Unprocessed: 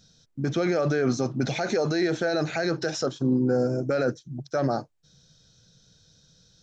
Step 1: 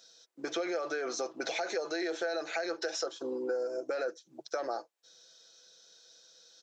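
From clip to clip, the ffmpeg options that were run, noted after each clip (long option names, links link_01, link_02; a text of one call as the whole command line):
ffmpeg -i in.wav -af "highpass=frequency=410:width=0.5412,highpass=frequency=410:width=1.3066,aecho=1:1:6:0.37,acompressor=threshold=-34dB:ratio=4,volume=1.5dB" out.wav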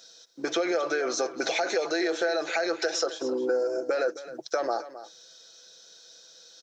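ffmpeg -i in.wav -af "aecho=1:1:265:0.188,volume=7dB" out.wav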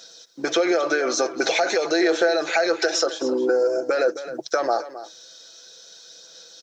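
ffmpeg -i in.wav -af "aphaser=in_gain=1:out_gain=1:delay=3.5:decay=0.22:speed=0.47:type=sinusoidal,volume=6dB" out.wav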